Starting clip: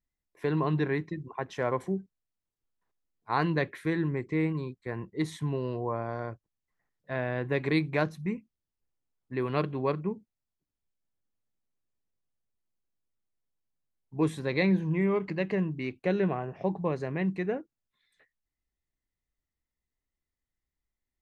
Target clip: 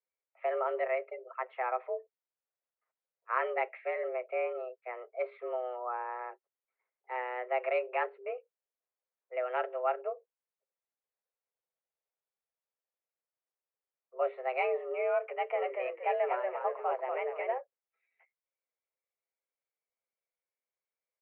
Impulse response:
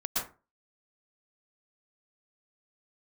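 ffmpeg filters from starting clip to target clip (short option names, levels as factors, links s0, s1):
-filter_complex "[0:a]aecho=1:1:7.3:0.31,asplit=3[s0][s1][s2];[s0]afade=t=out:st=15.53:d=0.02[s3];[s1]asplit=6[s4][s5][s6][s7][s8][s9];[s5]adelay=236,afreqshift=-61,volume=0.631[s10];[s6]adelay=472,afreqshift=-122,volume=0.24[s11];[s7]adelay=708,afreqshift=-183,volume=0.0912[s12];[s8]adelay=944,afreqshift=-244,volume=0.0347[s13];[s9]adelay=1180,afreqshift=-305,volume=0.0132[s14];[s4][s10][s11][s12][s13][s14]amix=inputs=6:normalize=0,afade=t=in:st=15.53:d=0.02,afade=t=out:st=17.57:d=0.02[s15];[s2]afade=t=in:st=17.57:d=0.02[s16];[s3][s15][s16]amix=inputs=3:normalize=0,highpass=f=190:t=q:w=0.5412,highpass=f=190:t=q:w=1.307,lowpass=f=2300:t=q:w=0.5176,lowpass=f=2300:t=q:w=0.7071,lowpass=f=2300:t=q:w=1.932,afreqshift=250,volume=0.668"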